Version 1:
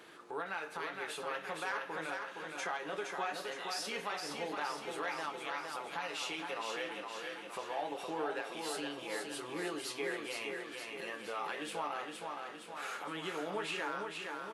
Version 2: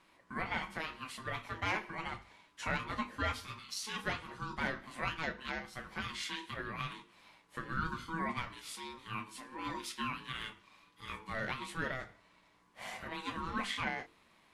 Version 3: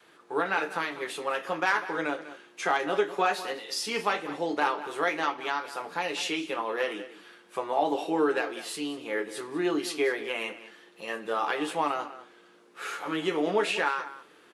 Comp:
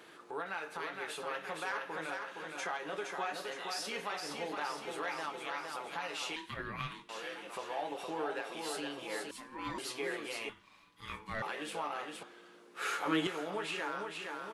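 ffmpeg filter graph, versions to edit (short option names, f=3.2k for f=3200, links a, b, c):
-filter_complex "[1:a]asplit=3[a][b][c];[0:a]asplit=5[d][e][f][g][h];[d]atrim=end=6.362[i];[a]atrim=start=6.358:end=7.092[j];[e]atrim=start=7.088:end=9.312[k];[b]atrim=start=9.308:end=9.782[l];[f]atrim=start=9.778:end=10.492[m];[c]atrim=start=10.488:end=11.422[n];[g]atrim=start=11.418:end=12.232[o];[2:a]atrim=start=12.228:end=13.272[p];[h]atrim=start=13.268[q];[i][j]acrossfade=d=0.004:c1=hsin:c2=hsin[r];[r][k]acrossfade=d=0.004:c1=hsin:c2=hsin[s];[s][l]acrossfade=d=0.004:c1=hsin:c2=hsin[t];[t][m]acrossfade=d=0.004:c1=hsin:c2=hsin[u];[u][n]acrossfade=d=0.004:c1=hsin:c2=hsin[v];[v][o]acrossfade=d=0.004:c1=hsin:c2=hsin[w];[w][p]acrossfade=d=0.004:c1=hsin:c2=hsin[x];[x][q]acrossfade=d=0.004:c1=hsin:c2=hsin"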